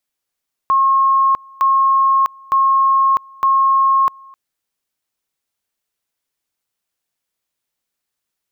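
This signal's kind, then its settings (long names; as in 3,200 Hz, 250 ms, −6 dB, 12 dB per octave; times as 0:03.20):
tone at two levels in turn 1,080 Hz −10 dBFS, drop 27.5 dB, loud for 0.65 s, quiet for 0.26 s, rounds 4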